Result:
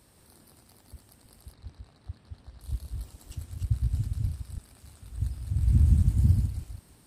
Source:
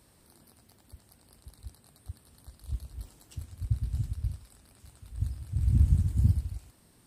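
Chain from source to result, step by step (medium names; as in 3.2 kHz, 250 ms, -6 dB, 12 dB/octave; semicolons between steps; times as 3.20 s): chunks repeated in reverse 158 ms, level -4 dB; 1.53–2.61 s: low-pass 4 kHz 12 dB/octave; trim +1.5 dB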